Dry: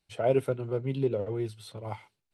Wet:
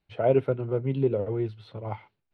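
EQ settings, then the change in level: air absorption 330 m; +4.0 dB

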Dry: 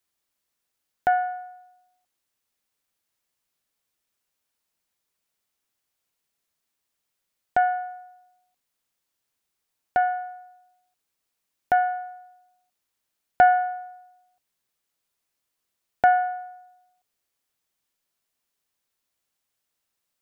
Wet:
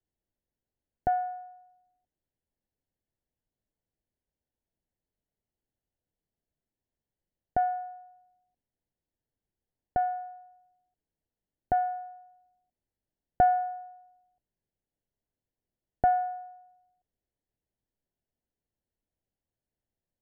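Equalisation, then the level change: running mean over 36 samples; low shelf 110 Hz +11 dB; 0.0 dB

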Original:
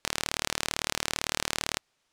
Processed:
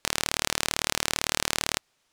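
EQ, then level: high shelf 9900 Hz +4.5 dB; +3.0 dB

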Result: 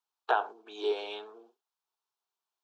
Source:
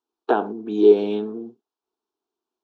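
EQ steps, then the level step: Bessel high-pass 970 Hz, order 4; 0.0 dB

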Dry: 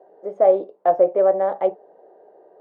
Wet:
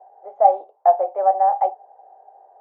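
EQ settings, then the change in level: resonant high-pass 790 Hz, resonance Q 8.8; air absorption 230 m; -6.0 dB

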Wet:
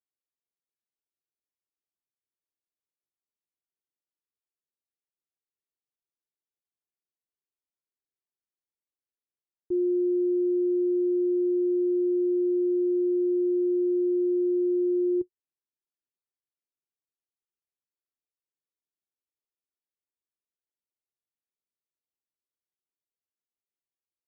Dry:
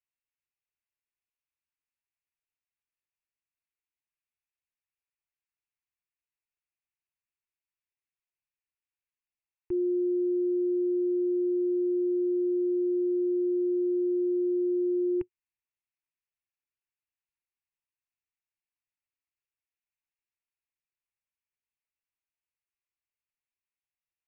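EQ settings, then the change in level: band-pass 400 Hz, Q 1.6; tilt -3 dB/oct; -1.5 dB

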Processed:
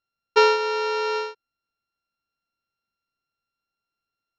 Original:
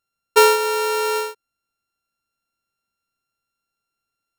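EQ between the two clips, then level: steep low-pass 5800 Hz 48 dB/oct; -3.5 dB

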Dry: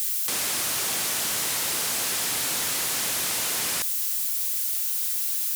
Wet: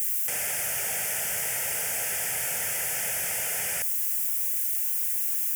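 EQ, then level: fixed phaser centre 1100 Hz, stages 6; 0.0 dB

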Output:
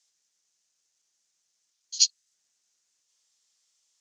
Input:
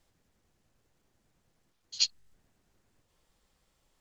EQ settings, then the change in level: synth low-pass 6200 Hz, resonance Q 2.9; differentiator; +4.0 dB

